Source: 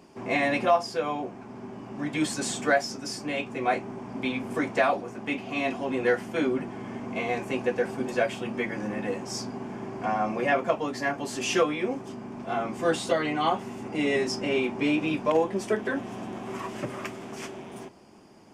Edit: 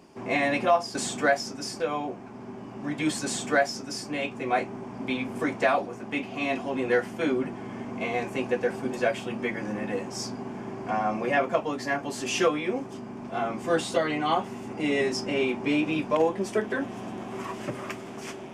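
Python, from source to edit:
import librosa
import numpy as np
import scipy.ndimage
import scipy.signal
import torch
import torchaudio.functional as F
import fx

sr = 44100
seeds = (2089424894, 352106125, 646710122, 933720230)

y = fx.edit(x, sr, fx.duplicate(start_s=2.39, length_s=0.85, to_s=0.95), tone=tone)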